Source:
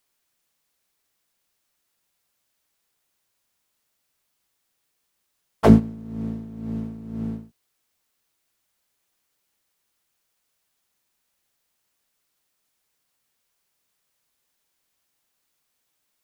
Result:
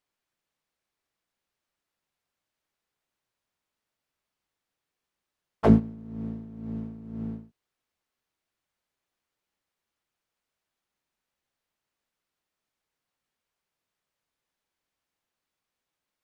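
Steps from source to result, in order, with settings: low-pass 2.6 kHz 6 dB/octave; trim -5 dB

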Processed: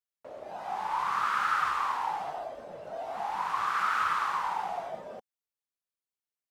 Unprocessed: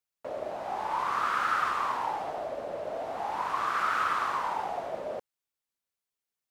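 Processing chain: spectral noise reduction 8 dB

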